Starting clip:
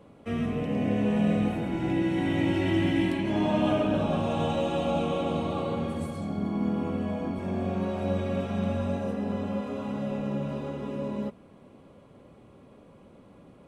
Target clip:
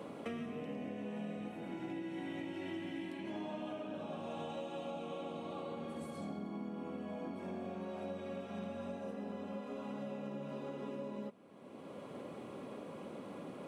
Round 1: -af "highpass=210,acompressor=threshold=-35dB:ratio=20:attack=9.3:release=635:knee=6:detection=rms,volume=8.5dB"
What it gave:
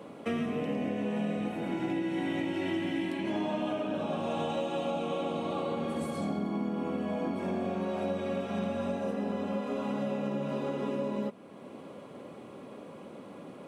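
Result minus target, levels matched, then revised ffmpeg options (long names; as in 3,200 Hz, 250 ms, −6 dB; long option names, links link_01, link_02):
downward compressor: peak gain reduction −10.5 dB
-af "highpass=210,acompressor=threshold=-46dB:ratio=20:attack=9.3:release=635:knee=6:detection=rms,volume=8.5dB"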